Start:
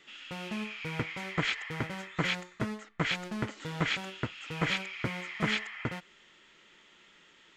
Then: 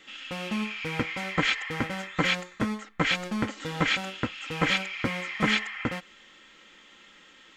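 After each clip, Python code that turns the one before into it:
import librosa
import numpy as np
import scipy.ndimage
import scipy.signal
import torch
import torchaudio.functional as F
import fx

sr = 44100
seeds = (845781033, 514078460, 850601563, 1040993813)

y = x + 0.45 * np.pad(x, (int(3.8 * sr / 1000.0), 0))[:len(x)]
y = F.gain(torch.from_numpy(y), 5.0).numpy()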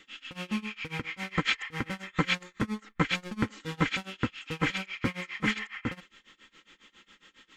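y = fx.peak_eq(x, sr, hz=650.0, db=-9.0, octaves=0.43)
y = y * (1.0 - 0.94 / 2.0 + 0.94 / 2.0 * np.cos(2.0 * np.pi * 7.3 * (np.arange(len(y)) / sr)))
y = fx.low_shelf(y, sr, hz=190.0, db=3.0)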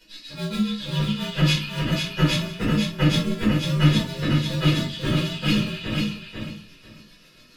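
y = fx.partial_stretch(x, sr, pct=116)
y = fx.echo_feedback(y, sr, ms=494, feedback_pct=20, wet_db=-4.5)
y = fx.room_shoebox(y, sr, seeds[0], volume_m3=210.0, walls='furnished', distance_m=4.8)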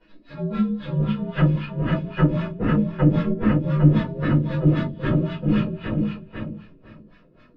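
y = fx.filter_lfo_lowpass(x, sr, shape='sine', hz=3.8, low_hz=420.0, high_hz=1700.0, q=1.3)
y = F.gain(torch.from_numpy(y), 1.5).numpy()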